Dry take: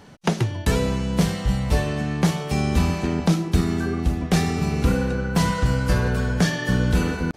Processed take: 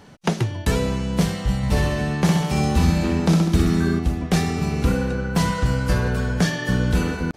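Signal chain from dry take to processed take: 1.57–3.99 s: reverse bouncing-ball echo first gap 60 ms, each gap 1.1×, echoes 5

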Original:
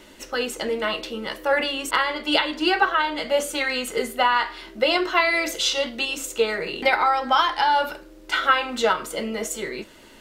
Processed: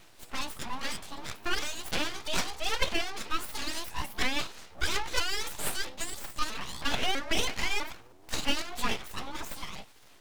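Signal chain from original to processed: sawtooth pitch modulation +7 st, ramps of 325 ms; full-wave rectifier; trim -5.5 dB

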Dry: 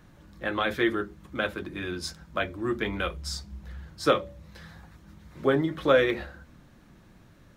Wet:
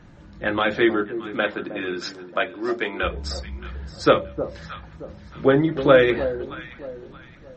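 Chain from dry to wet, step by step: 0.59–3.02 s: high-pass 120 Hz -> 410 Hz 12 dB/octave; treble shelf 3.8 kHz -6.5 dB; band-stop 1.1 kHz, Q 16; echo whose repeats swap between lows and highs 312 ms, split 920 Hz, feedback 55%, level -10.5 dB; trim +7 dB; MP3 32 kbps 44.1 kHz

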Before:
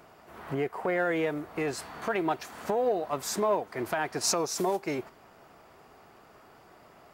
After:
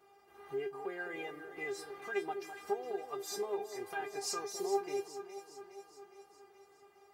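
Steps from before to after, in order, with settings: high-pass 72 Hz; feedback comb 400 Hz, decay 0.16 s, harmonics all, mix 100%; echo whose repeats swap between lows and highs 207 ms, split 870 Hz, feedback 74%, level -8.5 dB; trim +3 dB

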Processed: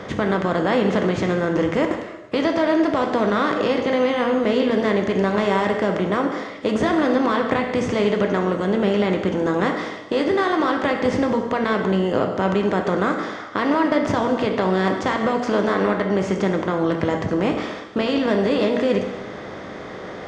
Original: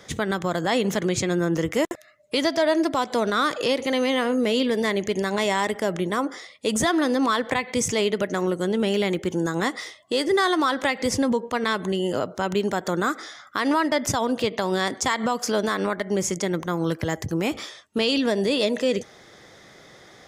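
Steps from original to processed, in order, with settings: spectral levelling over time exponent 0.6; tape spacing loss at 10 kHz 28 dB; gated-style reverb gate 380 ms falling, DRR 3.5 dB

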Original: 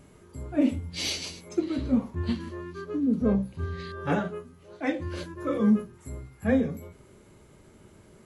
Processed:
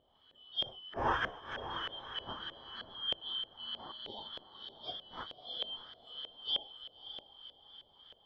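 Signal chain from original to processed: four frequency bands reordered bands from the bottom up 3412; echo that smears into a reverb 583 ms, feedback 47%, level -9 dB; LFO low-pass saw up 3.2 Hz 560–1700 Hz

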